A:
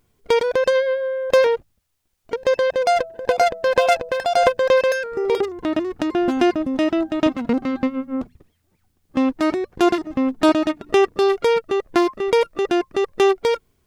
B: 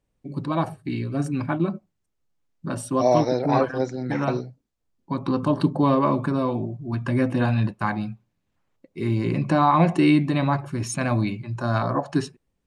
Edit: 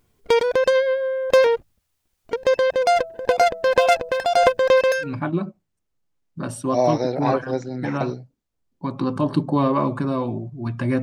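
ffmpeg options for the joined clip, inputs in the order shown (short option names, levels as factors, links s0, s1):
-filter_complex "[0:a]apad=whole_dur=11.02,atrim=end=11.02,atrim=end=5.16,asetpts=PTS-STARTPTS[s0];[1:a]atrim=start=1.25:end=7.29,asetpts=PTS-STARTPTS[s1];[s0][s1]acrossfade=d=0.18:c1=tri:c2=tri"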